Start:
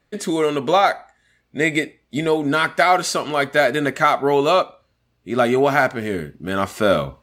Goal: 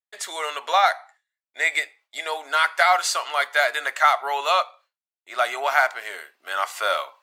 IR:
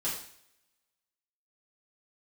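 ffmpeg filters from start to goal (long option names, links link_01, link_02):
-af "agate=range=-33dB:threshold=-43dB:ratio=3:detection=peak,highpass=frequency=750:width=0.5412,highpass=frequency=750:width=1.3066"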